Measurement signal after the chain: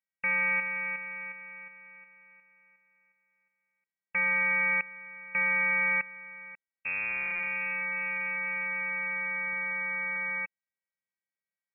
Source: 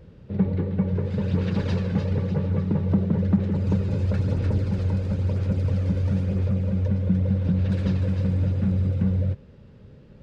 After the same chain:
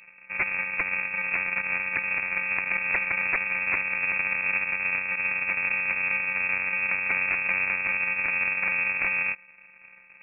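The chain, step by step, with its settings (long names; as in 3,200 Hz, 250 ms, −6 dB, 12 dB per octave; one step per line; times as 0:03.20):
samples sorted by size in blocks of 128 samples
wrap-around overflow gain 14 dB
voice inversion scrambler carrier 2,600 Hz
level −4.5 dB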